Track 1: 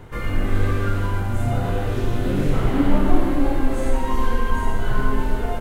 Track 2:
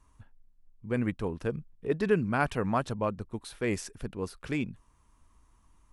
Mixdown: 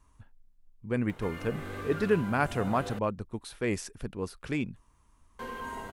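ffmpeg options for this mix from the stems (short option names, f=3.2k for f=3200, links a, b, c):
-filter_complex "[0:a]highpass=f=340:p=1,acompressor=mode=upward:threshold=-33dB:ratio=2.5,adelay=1100,volume=-10.5dB,asplit=3[a][b][c];[a]atrim=end=2.99,asetpts=PTS-STARTPTS,afade=t=out:st=2.986:d=0.004:c=hsin[d];[b]atrim=start=2.99:end=5.39,asetpts=PTS-STARTPTS,volume=0[e];[c]atrim=start=5.39,asetpts=PTS-STARTPTS,afade=t=in:d=0.004:c=hsin[f];[d][e][f]concat=n=3:v=0:a=1[g];[1:a]volume=0dB[h];[g][h]amix=inputs=2:normalize=0"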